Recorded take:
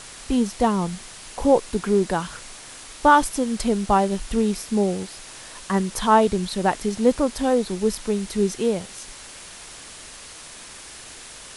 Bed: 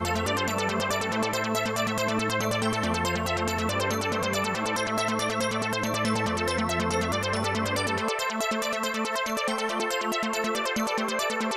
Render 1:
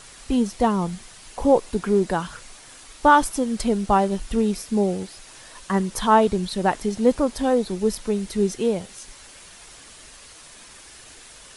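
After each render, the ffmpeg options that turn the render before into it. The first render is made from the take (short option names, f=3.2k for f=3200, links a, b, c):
-af "afftdn=nr=6:nf=-41"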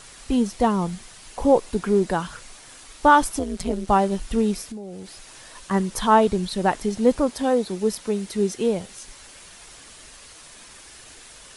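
-filter_complex "[0:a]asettb=1/sr,asplit=3[a][b][c];[a]atrim=end=3.394[d];[b]atrim=start=3.39:end=3.88,asetpts=PTS-STARTPTS,afade=t=in:d=0.004:c=qsin,afade=t=out:st=0.486:d=0.004:c=qsin,tremolo=f=180:d=0.919[e];[c]atrim=start=3.876[f];[d][e]acrossfade=d=0.004:c1=hsin:c2=qsin[g];[g][f]acrossfade=d=0.004:c1=qsin:c2=hsin,asettb=1/sr,asplit=3[h][i][j];[h]atrim=end=4.624[k];[i]atrim=start=4.62:end=5.71,asetpts=PTS-STARTPTS,afade=t=in:d=0.004:c=qsin,afade=t=out:st=1.086:d=0.004:c=qsin,acompressor=threshold=-31dB:ratio=16:attack=3.2:release=140:knee=1:detection=peak[l];[j]atrim=start=5.706[m];[k][l]acrossfade=d=0.004:c1=hsin:c2=qsin[n];[n][m]acrossfade=d=0.004:c1=qsin:c2=hsin,asettb=1/sr,asplit=3[o][p][q];[o]atrim=end=7.294[r];[p]atrim=start=7.29:end=8.61,asetpts=PTS-STARTPTS,afade=t=in:d=0.004:c=qsin,afade=t=out:st=1.316:d=0.004:c=qsin,highpass=f=140:p=1[s];[q]atrim=start=8.606[t];[r][s]acrossfade=d=0.004:c1=hsin:c2=qsin[u];[u][t]acrossfade=d=0.004:c1=qsin:c2=hsin"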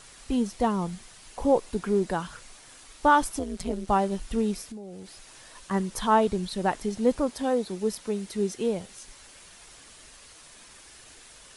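-af "volume=-5dB"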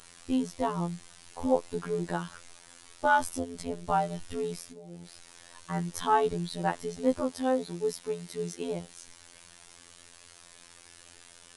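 -af "afftfilt=real='hypot(re,im)*cos(PI*b)':imag='0':win_size=2048:overlap=0.75"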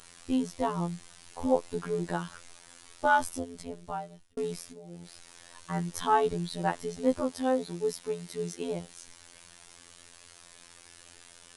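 -filter_complex "[0:a]asplit=2[a][b];[a]atrim=end=4.37,asetpts=PTS-STARTPTS,afade=t=out:st=3.15:d=1.22[c];[b]atrim=start=4.37,asetpts=PTS-STARTPTS,afade=t=in:d=0.004:c=hsin[d];[c][d]concat=n=2:v=0:a=1"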